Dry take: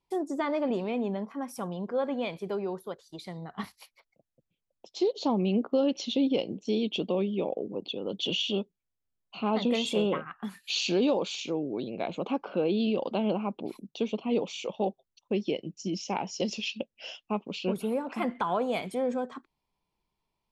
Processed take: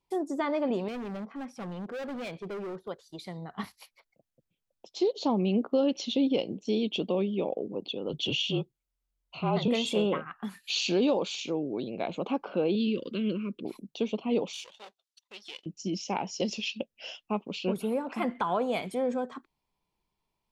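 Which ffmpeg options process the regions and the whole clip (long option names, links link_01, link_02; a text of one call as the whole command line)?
ffmpeg -i in.wav -filter_complex "[0:a]asettb=1/sr,asplit=3[link_01][link_02][link_03];[link_01]atrim=end=0.884[link_04];[link_02]atrim=start=0.88:end=2.88,asetpts=PTS-STARTPTS,afade=type=in:duration=0.004:curve=qsin,afade=type=out:start_time=1.996:duration=0.004:curve=qsin,lowpass=4000,equalizer=frequency=1000:width=6:gain=-7,volume=34.5dB,asoftclip=hard,volume=-34.5dB[link_05];[link_03]atrim=start=2.876[link_06];[link_04][link_05]acrossfade=duration=0.004:curve1=hsin:curve2=qsin[link_07];[link_07][link_06]acrossfade=duration=0.004:curve1=qsin:curve2=hsin,asettb=1/sr,asplit=3[link_08][link_09][link_10];[link_08]atrim=end=8.094[link_11];[link_09]atrim=start=8.09:end=9.68,asetpts=PTS-STARTPTS,afade=type=in:duration=0.004:curve=qsin,afade=type=out:start_time=1.586:duration=0.004:curve=qsin,bandreject=frequency=1800:width=13,afreqshift=-43[link_12];[link_10]atrim=start=9.676[link_13];[link_11][link_12]acrossfade=duration=0.004:curve1=hsin:curve2=qsin[link_14];[link_14][link_13]acrossfade=duration=0.004:curve1=qsin:curve2=hsin,asettb=1/sr,asplit=3[link_15][link_16][link_17];[link_15]atrim=end=12.754[link_18];[link_16]atrim=start=12.75:end=13.65,asetpts=PTS-STARTPTS,afade=type=in:duration=0.004:curve=qsin,afade=type=out:start_time=0.896:duration=0.004:curve=qsin,asuperstop=centerf=800:order=4:qfactor=0.83,equalizer=frequency=600:width=3.9:gain=-3.5[link_19];[link_17]atrim=start=13.646[link_20];[link_18][link_19]acrossfade=duration=0.004:curve1=hsin:curve2=qsin[link_21];[link_21][link_20]acrossfade=duration=0.004:curve1=qsin:curve2=hsin,asettb=1/sr,asplit=3[link_22][link_23][link_24];[link_22]atrim=end=14.534[link_25];[link_23]atrim=start=14.53:end=15.66,asetpts=PTS-STARTPTS,afade=type=in:duration=0.004:curve=qsin,afade=type=out:start_time=1.126:duration=0.004:curve=qsin,aeval=exprs='if(lt(val(0),0),0.251*val(0),val(0))':channel_layout=same,bandpass=frequency=3900:width_type=q:width=1.1,highshelf=frequency=4800:gain=11[link_26];[link_24]atrim=start=15.656[link_27];[link_25][link_26]acrossfade=duration=0.004:curve1=hsin:curve2=qsin[link_28];[link_28][link_27]acrossfade=duration=0.004:curve1=qsin:curve2=hsin" out.wav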